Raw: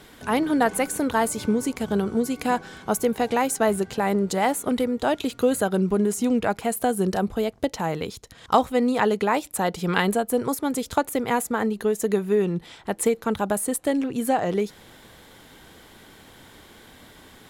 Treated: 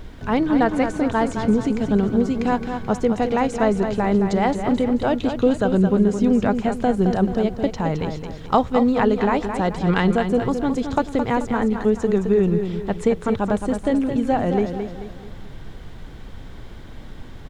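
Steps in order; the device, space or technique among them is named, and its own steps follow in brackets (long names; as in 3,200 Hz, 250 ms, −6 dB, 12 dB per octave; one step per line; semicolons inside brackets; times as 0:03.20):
low-pass filter 6,800 Hz 24 dB per octave
car interior (parametric band 120 Hz +6 dB 0.74 octaves; high-shelf EQ 4,000 Hz −6 dB; brown noise bed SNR 17 dB)
low-shelf EQ 340 Hz +5.5 dB
repeating echo 217 ms, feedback 42%, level −7.5 dB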